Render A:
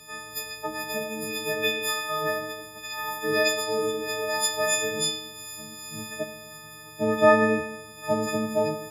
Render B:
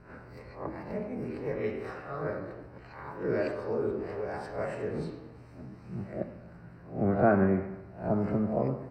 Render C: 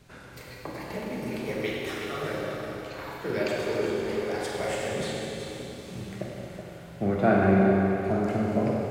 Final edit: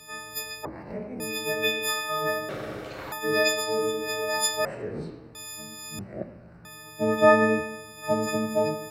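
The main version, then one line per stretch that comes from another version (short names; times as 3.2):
A
0.65–1.2 from B
2.49–3.12 from C
4.65–5.35 from B
5.99–6.65 from B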